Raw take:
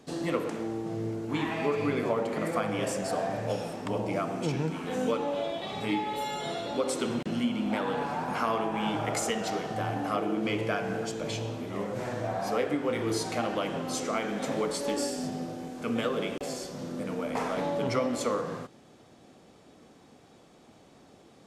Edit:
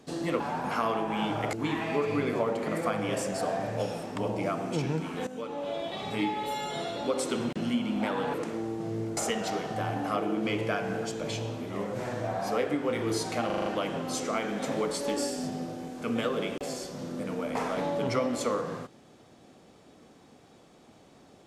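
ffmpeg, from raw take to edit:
-filter_complex "[0:a]asplit=11[a][b][c][d][e][f][g][h][i][j][k];[a]atrim=end=0.402[l];[b]atrim=start=8.038:end=9.172[m];[c]atrim=start=1.228:end=4.97,asetpts=PTS-STARTPTS,afade=t=out:st=3.738:d=0.004:c=hsin:silence=0.16788[n];[d]atrim=start=4.97:end=8.042,asetpts=PTS-STARTPTS,afade=t=in:d=0.61:silence=0.16788[o];[e]atrim=start=0.398:end=1.232[p];[f]atrim=start=9.168:end=13.502[q];[g]atrim=start=13.458:end=13.502[r];[h]atrim=start=13.458:end=13.502[s];[i]atrim=start=13.458:end=13.502[t];[j]atrim=start=13.458:end=13.502[u];[k]atrim=start=13.458[v];[l][m]acrossfade=d=0.004:c1=hsin:c2=hsin[w];[n][o]concat=n=2:v=0:a=1[x];[w][x]acrossfade=d=0.004:c1=hsin:c2=hsin[y];[y][p]acrossfade=d=0.004:c1=hsin:c2=hsin[z];[z][q]acrossfade=d=0.004:c1=hsin:c2=hsin[aa];[aa][r]acrossfade=d=0.004:c1=hsin:c2=hsin[ab];[ab][s]acrossfade=d=0.004:c1=hsin:c2=hsin[ac];[ac][t]acrossfade=d=0.004:c1=hsin:c2=hsin[ad];[ad][u]acrossfade=d=0.004:c1=hsin:c2=hsin[ae];[ae][v]acrossfade=d=0.004:c1=hsin:c2=hsin"

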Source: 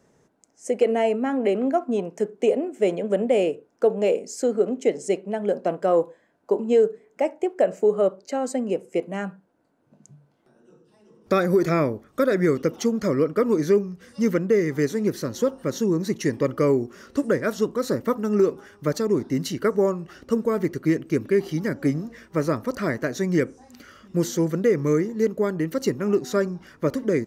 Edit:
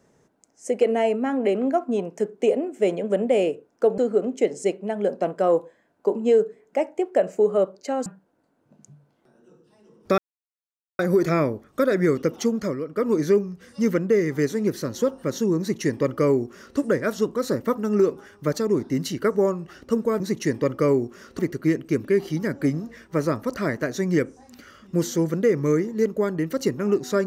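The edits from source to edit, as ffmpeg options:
-filter_complex "[0:a]asplit=8[a][b][c][d][e][f][g][h];[a]atrim=end=3.982[i];[b]atrim=start=4.418:end=8.502[j];[c]atrim=start=9.268:end=11.39,asetpts=PTS-STARTPTS,afade=t=out:st=2.118:d=0.004:c=hsin,apad=pad_dur=0.81[k];[d]atrim=start=11.39:end=13.2,asetpts=PTS-STARTPTS,afade=t=in:d=0.004:c=hsin,afade=t=out:st=1.47:d=0.34:c=qsin:silence=0.334965[l];[e]atrim=start=13.2:end=13.27,asetpts=PTS-STARTPTS,volume=-9.5dB[m];[f]atrim=start=13.27:end=20.602,asetpts=PTS-STARTPTS,afade=t=in:d=0.34:c=qsin:silence=0.334965[n];[g]atrim=start=15.988:end=17.182[o];[h]atrim=start=20.598[p];[i][j]acrossfade=d=0.004:c1=hsin:c2=hsin[q];[k][l][m][n]concat=n=4:v=0:a=1[r];[q][r]acrossfade=d=0.004:c1=hsin:c2=hsin[s];[s][o]acrossfade=d=0.004:c1=hsin:c2=hsin[t];[t][p]acrossfade=d=0.004:c1=hsin:c2=hsin"

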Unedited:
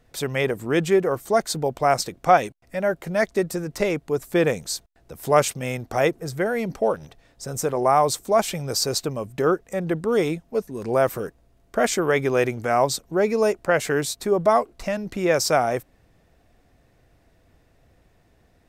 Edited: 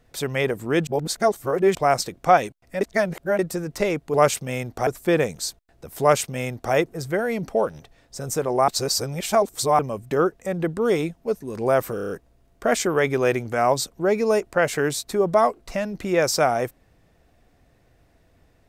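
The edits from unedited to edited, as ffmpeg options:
-filter_complex "[0:a]asplit=14[a][b][c][d][e][f][g][h][i][j][k][l][m][n];[a]atrim=end=0.872[o];[b]atrim=start=0.868:end=1.752,asetpts=PTS-STARTPTS,areverse[p];[c]atrim=start=1.748:end=2.812[q];[d]atrim=start=2.808:end=3.392,asetpts=PTS-STARTPTS,areverse[r];[e]atrim=start=3.388:end=4.142[s];[f]atrim=start=5.278:end=6.012[t];[g]atrim=start=4.138:end=7.952[u];[h]atrim=start=7.948:end=9.062,asetpts=PTS-STARTPTS,areverse[v];[i]atrim=start=9.058:end=11.252[w];[j]atrim=start=11.218:end=11.252[x];[k]atrim=start=11.218:end=11.252[y];[l]atrim=start=11.218:end=11.252[z];[m]atrim=start=11.218:end=11.252[aa];[n]atrim=start=11.218[ab];[o][p]acrossfade=d=0.004:c1=hsin:c2=hsin[ac];[ac][q]acrossfade=d=0.004:c1=hsin:c2=hsin[ad];[ad][r]acrossfade=d=0.004:c1=hsin:c2=hsin[ae];[ae][s]acrossfade=d=0.004:c1=hsin:c2=hsin[af];[af][t]acrossfade=d=0.004:c1=hsin:c2=hsin[ag];[ag][u]acrossfade=d=0.004:c1=hsin:c2=hsin[ah];[ah][v]acrossfade=d=0.004:c1=hsin:c2=hsin[ai];[ai][w]acrossfade=d=0.004:c1=hsin:c2=hsin[aj];[aj][x]acrossfade=d=0.004:c1=hsin:c2=hsin[ak];[ak][y]acrossfade=d=0.004:c1=hsin:c2=hsin[al];[al][z]acrossfade=d=0.004:c1=hsin:c2=hsin[am];[am][aa]acrossfade=d=0.004:c1=hsin:c2=hsin[an];[an][ab]acrossfade=d=0.004:c1=hsin:c2=hsin"

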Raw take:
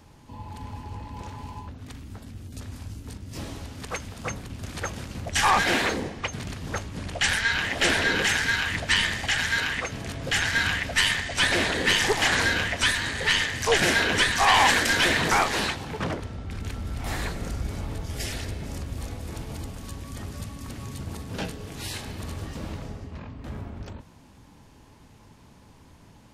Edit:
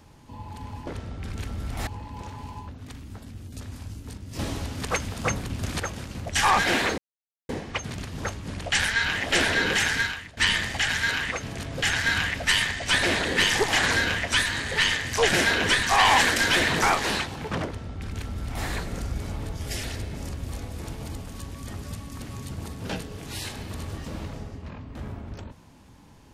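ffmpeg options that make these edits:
-filter_complex "[0:a]asplit=7[a][b][c][d][e][f][g];[a]atrim=end=0.872[h];[b]atrim=start=16.138:end=17.142[i];[c]atrim=start=0.868:end=3.392[j];[d]atrim=start=3.388:end=4.802,asetpts=PTS-STARTPTS,volume=6dB[k];[e]atrim=start=4.798:end=5.98,asetpts=PTS-STARTPTS,afade=t=out:st=1.178:d=0.004:c=hsin,apad=pad_dur=0.51[l];[f]atrim=start=5.98:end=8.86,asetpts=PTS-STARTPTS,afade=t=in:d=0.004:c=hsin,afade=t=out:st=2.51:d=0.37:c=qua:silence=0.11885[m];[g]atrim=start=8.86,asetpts=PTS-STARTPTS,afade=t=in:d=0.004:c=hsin:silence=0.11885[n];[h][i]acrossfade=d=0.004:c1=hsin:c2=hsin[o];[o][j]acrossfade=d=0.004:c1=hsin:c2=hsin[p];[p][k]acrossfade=d=0.004:c1=hsin:c2=hsin[q];[l][m][n]concat=n=3:v=0:a=1[r];[q][r]acrossfade=d=0.004:c1=hsin:c2=hsin"

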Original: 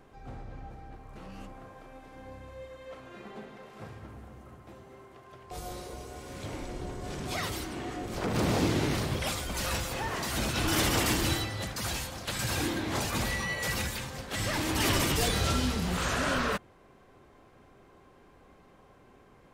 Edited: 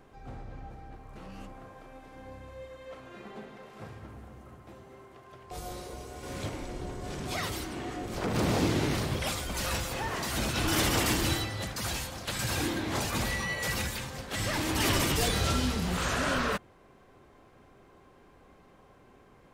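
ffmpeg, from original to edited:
-filter_complex "[0:a]asplit=3[a][b][c];[a]atrim=end=6.232[d];[b]atrim=start=6.228:end=6.492,asetpts=PTS-STARTPTS,volume=4dB[e];[c]atrim=start=6.488[f];[d][e]acrossfade=d=0.004:c1=hsin:c2=hsin[g];[g][f]acrossfade=d=0.004:c1=hsin:c2=hsin"

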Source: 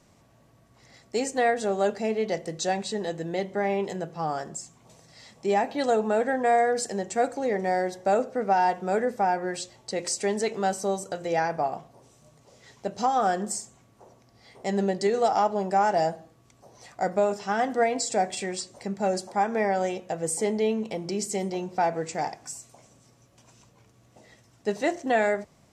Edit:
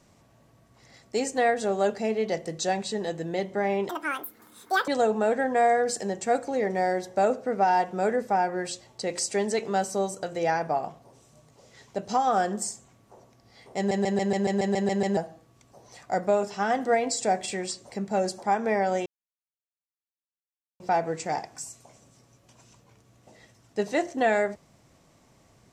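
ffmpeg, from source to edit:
-filter_complex "[0:a]asplit=15[a][b][c][d][e][f][g][h][i][j][k][l][m][n][o];[a]atrim=end=3.894[p];[b]atrim=start=3.89:end=5.77,asetpts=PTS-STARTPTS,asetrate=83790,aresample=44100[q];[c]atrim=start=5.766:end=14.802[r];[d]atrim=start=14.658:end=14.802[s];[e]atrim=start=14.658:end=14.802[t];[f]atrim=start=14.658:end=14.802[u];[g]atrim=start=14.658:end=14.802[v];[h]atrim=start=14.658:end=14.802[w];[i]atrim=start=14.658:end=14.802[x];[j]atrim=start=14.658:end=14.802[y];[k]atrim=start=14.658:end=14.802[z];[l]atrim=start=14.658:end=14.802[aa];[m]atrim=start=16.058:end=19.95,asetpts=PTS-STARTPTS,afade=t=out:st=3.888:d=0.004:c=hsin[ab];[n]atrim=start=19.95:end=21.69,asetpts=PTS-STARTPTS,volume=0[ac];[o]atrim=start=21.69,asetpts=PTS-STARTPTS,afade=t=in:d=0.004:c=hsin[ad];[p][q]acrossfade=d=0.004:c1=hsin:c2=hsin[ae];[ae][r]acrossfade=d=0.004:c1=hsin:c2=hsin[af];[af][s]acrossfade=d=0.004:c1=hsin:c2=hsin[ag];[ag][t]acrossfade=d=0.004:c1=hsin:c2=hsin[ah];[ah][u]acrossfade=d=0.004:c1=hsin:c2=hsin[ai];[ai][v]acrossfade=d=0.004:c1=hsin:c2=hsin[aj];[aj][w]acrossfade=d=0.004:c1=hsin:c2=hsin[ak];[ak][x]acrossfade=d=0.004:c1=hsin:c2=hsin[al];[al][y]acrossfade=d=0.004:c1=hsin:c2=hsin[am];[am][z]acrossfade=d=0.004:c1=hsin:c2=hsin[an];[an][aa]acrossfade=d=0.004:c1=hsin:c2=hsin[ao];[ab][ac][ad]concat=n=3:v=0:a=1[ap];[ao][ap]acrossfade=d=0.004:c1=hsin:c2=hsin"

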